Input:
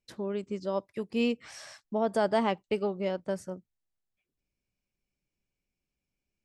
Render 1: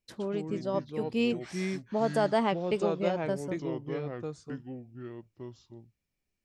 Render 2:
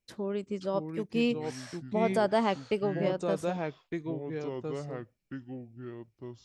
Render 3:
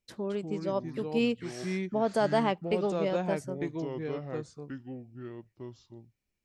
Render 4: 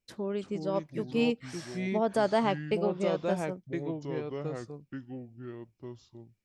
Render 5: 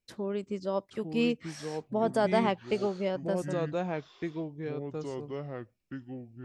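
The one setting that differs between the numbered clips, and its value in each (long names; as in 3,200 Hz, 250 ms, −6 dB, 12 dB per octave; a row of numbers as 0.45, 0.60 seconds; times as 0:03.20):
delay with pitch and tempo change per echo, delay time: 94, 504, 195, 309, 804 milliseconds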